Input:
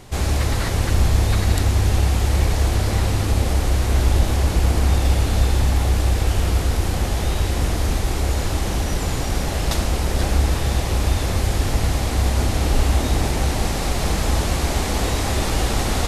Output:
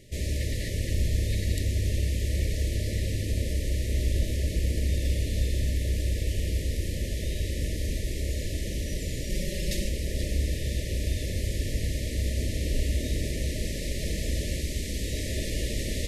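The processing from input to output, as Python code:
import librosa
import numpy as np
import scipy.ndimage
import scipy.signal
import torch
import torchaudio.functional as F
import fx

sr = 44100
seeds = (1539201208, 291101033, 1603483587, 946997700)

y = fx.brickwall_bandstop(x, sr, low_hz=650.0, high_hz=1700.0)
y = fx.comb(y, sr, ms=5.4, depth=0.79, at=(9.29, 9.89))
y = fx.peak_eq(y, sr, hz=840.0, db=-7.5, octaves=1.8, at=(14.61, 15.13))
y = y * 10.0 ** (-9.0 / 20.0)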